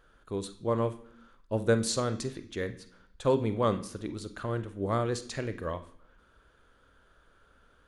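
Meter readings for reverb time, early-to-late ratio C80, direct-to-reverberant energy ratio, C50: 0.65 s, 17.5 dB, 10.0 dB, 13.5 dB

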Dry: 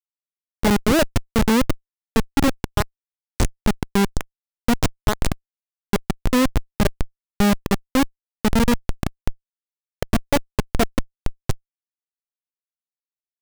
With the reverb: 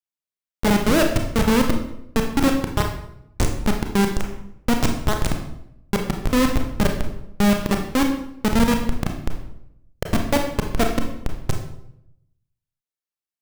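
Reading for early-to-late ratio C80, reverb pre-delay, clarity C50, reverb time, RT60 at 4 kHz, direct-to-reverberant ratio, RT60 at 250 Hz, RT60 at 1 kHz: 9.0 dB, 27 ms, 6.5 dB, 0.80 s, 0.55 s, 2.5 dB, 0.95 s, 0.70 s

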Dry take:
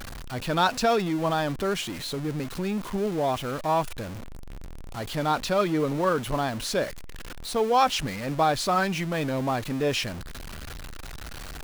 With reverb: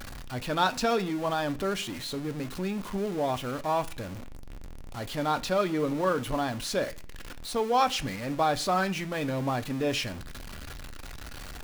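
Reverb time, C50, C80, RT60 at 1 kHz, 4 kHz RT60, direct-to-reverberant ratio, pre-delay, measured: 0.45 s, 20.0 dB, 25.0 dB, 0.40 s, 0.50 s, 10.0 dB, 3 ms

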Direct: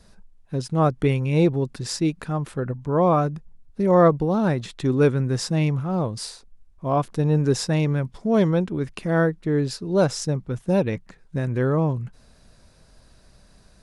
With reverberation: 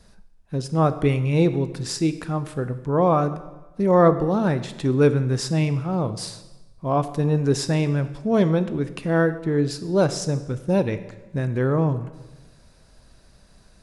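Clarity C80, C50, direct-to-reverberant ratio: 14.5 dB, 13.0 dB, 11.0 dB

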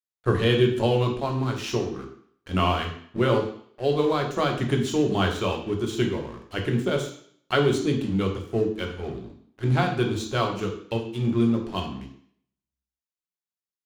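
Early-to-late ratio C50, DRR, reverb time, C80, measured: 7.5 dB, 2.0 dB, 0.60 s, 10.5 dB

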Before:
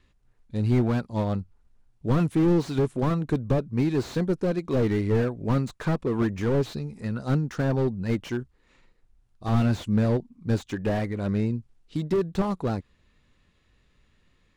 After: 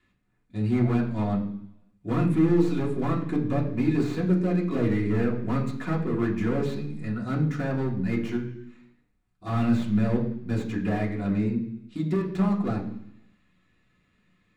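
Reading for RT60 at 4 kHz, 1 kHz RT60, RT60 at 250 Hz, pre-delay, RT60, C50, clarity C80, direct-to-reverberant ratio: 1.0 s, 0.70 s, 0.90 s, 3 ms, 0.70 s, 8.5 dB, 11.5 dB, −4.0 dB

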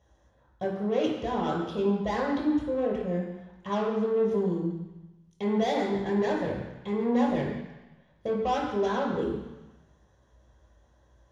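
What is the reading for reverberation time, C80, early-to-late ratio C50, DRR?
1.1 s, 5.5 dB, 3.0 dB, −4.0 dB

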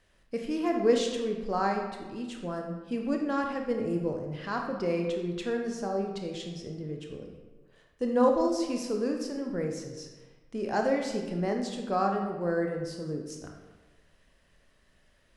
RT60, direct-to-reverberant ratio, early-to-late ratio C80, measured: 1.3 s, 2.0 dB, 6.5 dB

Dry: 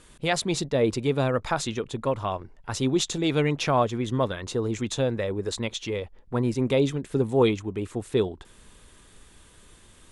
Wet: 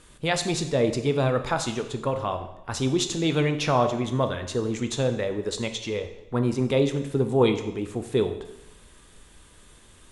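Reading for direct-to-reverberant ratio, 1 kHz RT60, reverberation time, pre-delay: 7.0 dB, 0.90 s, 0.90 s, 6 ms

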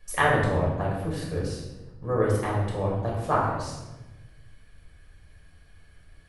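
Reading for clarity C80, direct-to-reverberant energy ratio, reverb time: 4.0 dB, −5.0 dB, 1.1 s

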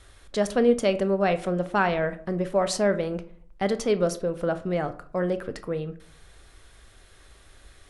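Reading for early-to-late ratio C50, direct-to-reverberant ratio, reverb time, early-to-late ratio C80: 15.5 dB, 11.0 dB, 0.50 s, 19.5 dB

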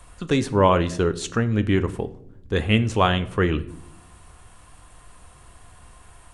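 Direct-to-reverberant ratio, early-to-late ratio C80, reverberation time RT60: 11.0 dB, 20.0 dB, 0.75 s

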